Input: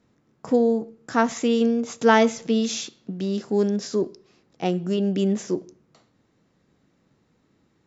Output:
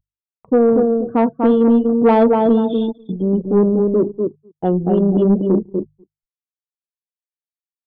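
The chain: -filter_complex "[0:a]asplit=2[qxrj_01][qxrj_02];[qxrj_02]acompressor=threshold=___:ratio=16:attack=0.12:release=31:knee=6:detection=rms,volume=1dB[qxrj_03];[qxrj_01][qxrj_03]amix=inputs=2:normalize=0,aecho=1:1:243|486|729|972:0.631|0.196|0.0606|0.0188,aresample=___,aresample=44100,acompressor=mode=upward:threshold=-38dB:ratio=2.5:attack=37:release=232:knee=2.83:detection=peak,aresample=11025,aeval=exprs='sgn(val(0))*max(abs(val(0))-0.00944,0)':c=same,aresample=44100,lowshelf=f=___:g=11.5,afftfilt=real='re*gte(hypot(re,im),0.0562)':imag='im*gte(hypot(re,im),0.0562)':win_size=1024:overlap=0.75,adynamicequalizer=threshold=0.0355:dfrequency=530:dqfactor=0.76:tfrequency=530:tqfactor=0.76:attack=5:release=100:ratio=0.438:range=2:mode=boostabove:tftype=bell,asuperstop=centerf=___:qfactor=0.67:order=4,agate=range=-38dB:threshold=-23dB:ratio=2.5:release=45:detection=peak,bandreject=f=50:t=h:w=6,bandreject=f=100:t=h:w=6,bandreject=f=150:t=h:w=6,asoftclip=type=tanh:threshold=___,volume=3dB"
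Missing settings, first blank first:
-28dB, 8000, 98, 2100, -8.5dB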